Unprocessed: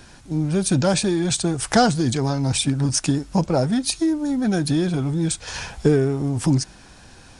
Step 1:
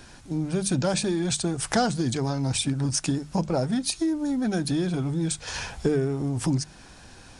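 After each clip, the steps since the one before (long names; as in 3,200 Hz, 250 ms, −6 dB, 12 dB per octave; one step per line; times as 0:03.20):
mains-hum notches 50/100/150/200 Hz
downward compressor 1.5 to 1, threshold −26 dBFS, peak gain reduction 6 dB
level −1.5 dB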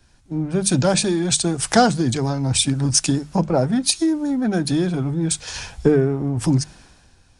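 multiband upward and downward expander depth 70%
level +6 dB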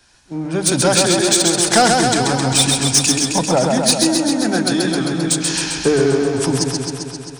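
bass and treble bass 0 dB, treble +3 dB
mid-hump overdrive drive 15 dB, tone 7,300 Hz, clips at −0.5 dBFS
feedback echo with a swinging delay time 132 ms, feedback 73%, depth 62 cents, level −3.5 dB
level −2.5 dB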